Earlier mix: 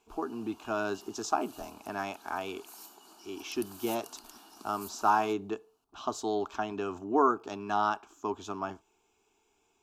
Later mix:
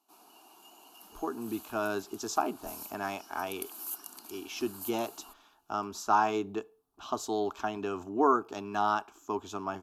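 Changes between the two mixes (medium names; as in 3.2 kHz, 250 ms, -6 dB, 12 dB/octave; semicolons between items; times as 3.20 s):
speech: entry +1.05 s; master: add peaking EQ 12 kHz +9.5 dB 0.52 oct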